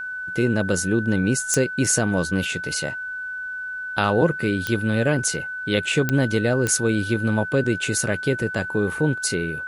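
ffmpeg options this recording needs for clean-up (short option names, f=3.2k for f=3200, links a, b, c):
-af "adeclick=t=4,bandreject=f=1.5k:w=30,agate=range=-21dB:threshold=-23dB"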